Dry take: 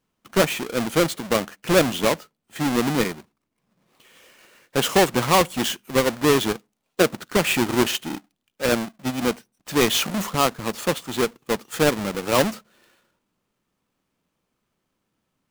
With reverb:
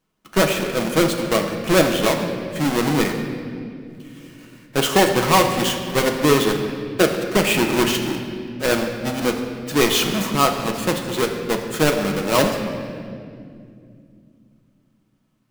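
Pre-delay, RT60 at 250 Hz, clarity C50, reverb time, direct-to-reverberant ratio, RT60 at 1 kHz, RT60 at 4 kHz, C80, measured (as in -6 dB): 3 ms, 3.9 s, 6.0 dB, 2.4 s, 3.0 dB, 2.0 s, 1.7 s, 7.0 dB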